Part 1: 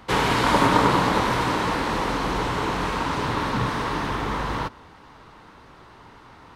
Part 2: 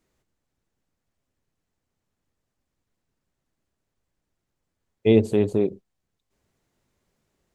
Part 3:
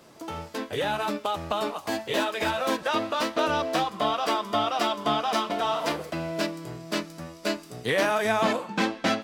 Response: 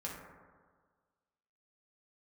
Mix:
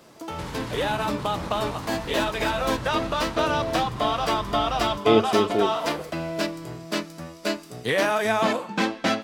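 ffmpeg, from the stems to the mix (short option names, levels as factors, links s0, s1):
-filter_complex "[0:a]bass=f=250:g=12,treble=f=4000:g=7,alimiter=limit=0.237:level=0:latency=1:release=43,adelay=300,volume=0.211[s0];[1:a]highpass=f=380:p=1,volume=1.26[s1];[2:a]volume=1.19[s2];[s0][s1][s2]amix=inputs=3:normalize=0"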